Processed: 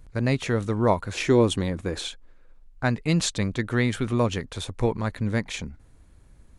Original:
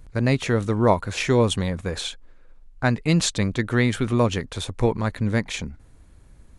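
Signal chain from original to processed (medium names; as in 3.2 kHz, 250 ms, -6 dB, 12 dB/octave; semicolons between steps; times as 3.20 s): 1.13–2.08 s: peaking EQ 320 Hz +9 dB 0.58 oct; trim -3 dB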